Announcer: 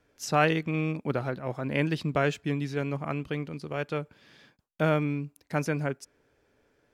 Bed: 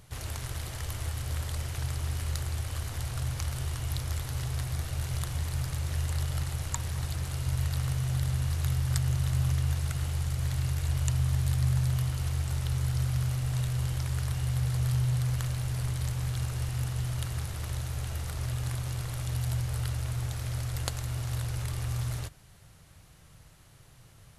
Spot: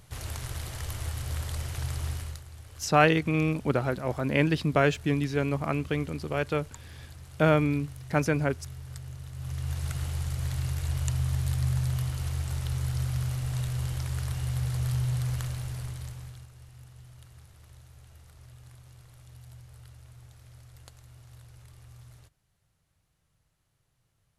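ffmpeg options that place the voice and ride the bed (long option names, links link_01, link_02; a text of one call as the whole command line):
ffmpeg -i stem1.wav -i stem2.wav -filter_complex "[0:a]adelay=2600,volume=3dB[link_01];[1:a]volume=12.5dB,afade=type=out:start_time=2.08:duration=0.34:silence=0.211349,afade=type=in:start_time=9.35:duration=0.54:silence=0.237137,afade=type=out:start_time=15.35:duration=1.13:silence=0.133352[link_02];[link_01][link_02]amix=inputs=2:normalize=0" out.wav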